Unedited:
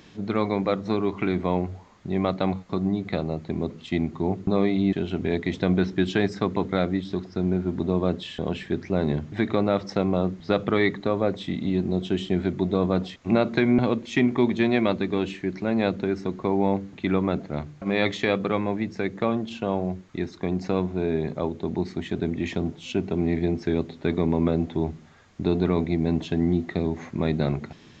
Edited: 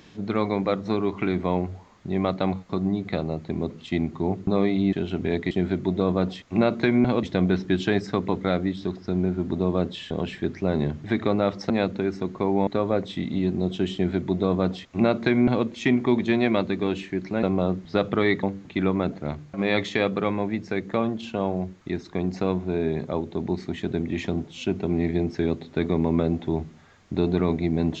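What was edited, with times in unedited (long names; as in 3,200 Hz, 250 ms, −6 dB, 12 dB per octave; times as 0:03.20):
0:09.98–0:10.98: swap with 0:15.74–0:16.71
0:12.25–0:13.97: duplicate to 0:05.51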